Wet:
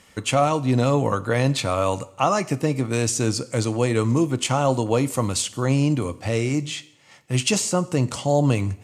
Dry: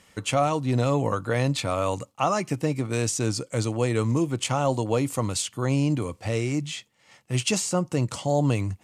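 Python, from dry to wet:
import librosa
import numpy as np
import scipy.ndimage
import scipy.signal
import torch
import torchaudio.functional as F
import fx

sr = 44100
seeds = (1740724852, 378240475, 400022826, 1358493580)

y = fx.rev_double_slope(x, sr, seeds[0], early_s=0.69, late_s=2.8, knee_db=-27, drr_db=14.5)
y = y * 10.0 ** (3.5 / 20.0)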